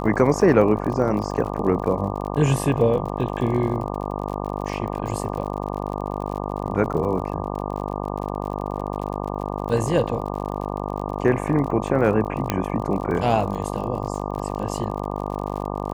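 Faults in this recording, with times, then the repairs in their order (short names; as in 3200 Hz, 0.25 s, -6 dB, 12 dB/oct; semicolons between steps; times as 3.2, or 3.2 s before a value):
buzz 50 Hz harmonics 24 -28 dBFS
crackle 49/s -31 dBFS
12.5 pop -6 dBFS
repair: de-click; de-hum 50 Hz, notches 24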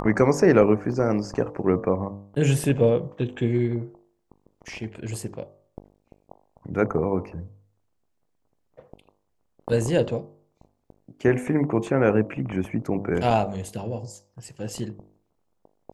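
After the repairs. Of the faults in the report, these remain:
none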